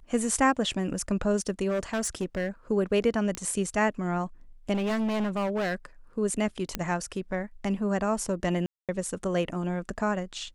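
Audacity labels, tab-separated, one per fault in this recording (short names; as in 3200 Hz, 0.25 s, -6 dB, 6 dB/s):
1.680000	2.490000	clipped -24 dBFS
3.350000	3.350000	pop -14 dBFS
4.730000	5.750000	clipped -25 dBFS
6.750000	6.750000	pop -12 dBFS
8.660000	8.890000	gap 0.227 s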